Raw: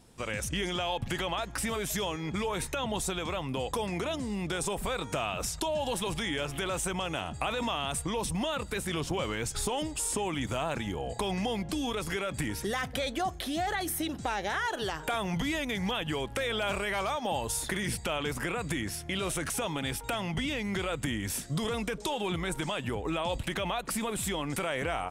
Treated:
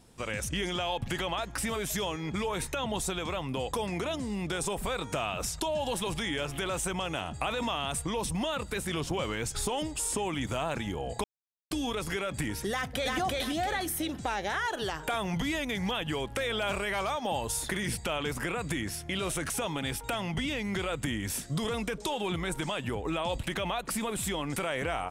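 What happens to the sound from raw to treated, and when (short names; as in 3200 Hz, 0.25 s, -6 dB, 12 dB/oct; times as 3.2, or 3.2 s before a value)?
11.24–11.71 mute
12.71–13.17 echo throw 0.34 s, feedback 35%, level -1 dB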